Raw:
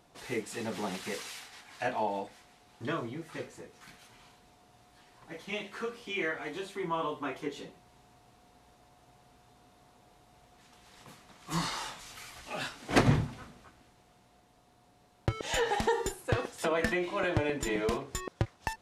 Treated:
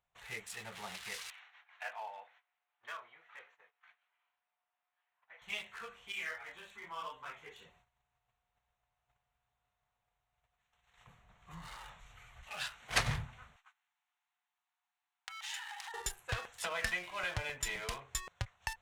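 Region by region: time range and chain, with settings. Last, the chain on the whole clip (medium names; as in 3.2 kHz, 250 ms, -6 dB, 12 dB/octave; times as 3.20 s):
1.30–5.42 s: high-pass 710 Hz + distance through air 240 m + short-mantissa float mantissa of 6-bit
6.12–7.66 s: doubling 41 ms -6 dB + three-phase chorus
11.07–12.43 s: tilt shelf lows +7 dB, about 660 Hz + compression 2:1, threshold -39 dBFS
13.56–15.94 s: elliptic high-pass 790 Hz + peaking EQ 5.4 kHz +3 dB 2.5 oct + compression, threshold -37 dBFS
whole clip: local Wiener filter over 9 samples; gate -58 dBFS, range -15 dB; amplifier tone stack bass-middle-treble 10-0-10; trim +3 dB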